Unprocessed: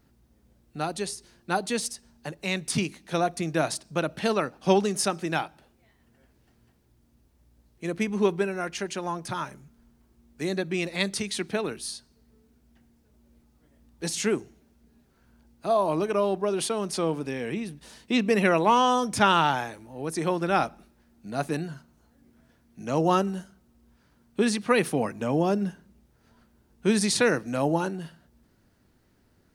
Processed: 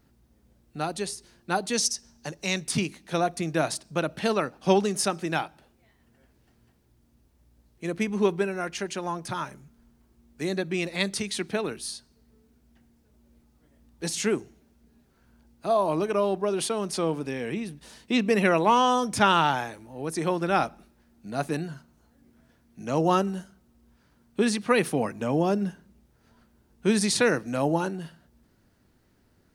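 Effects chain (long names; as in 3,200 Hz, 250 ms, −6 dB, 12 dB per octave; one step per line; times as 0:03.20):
0:01.73–0:02.64: parametric band 5,800 Hz +13.5 dB 0.51 octaves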